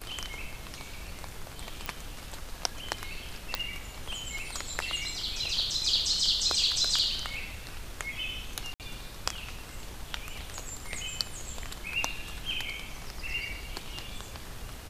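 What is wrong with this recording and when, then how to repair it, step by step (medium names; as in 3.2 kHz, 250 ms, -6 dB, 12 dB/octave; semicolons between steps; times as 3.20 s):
1.86 s: pop
3.55 s: pop
8.74–8.80 s: dropout 58 ms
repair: de-click; interpolate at 8.74 s, 58 ms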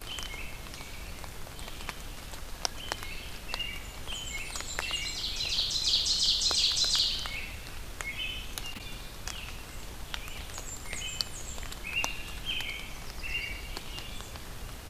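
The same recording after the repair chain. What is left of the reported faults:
nothing left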